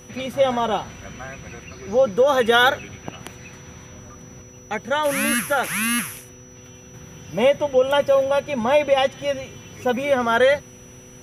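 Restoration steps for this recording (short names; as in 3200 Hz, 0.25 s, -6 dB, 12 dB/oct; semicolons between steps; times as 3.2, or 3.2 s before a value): de-hum 124.4 Hz, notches 4; notch 5900 Hz, Q 30; interpolate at 3.78/4.12/9.22, 1 ms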